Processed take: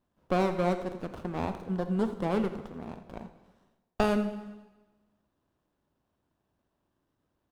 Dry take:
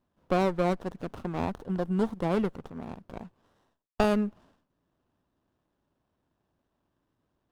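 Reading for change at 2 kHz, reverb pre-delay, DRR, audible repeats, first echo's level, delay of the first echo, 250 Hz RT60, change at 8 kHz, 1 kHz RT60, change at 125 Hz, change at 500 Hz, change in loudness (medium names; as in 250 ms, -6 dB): -0.5 dB, 5 ms, 8.0 dB, 1, -14.5 dB, 85 ms, 1.2 s, -1.0 dB, 1.2 s, -1.5 dB, -1.0 dB, -1.5 dB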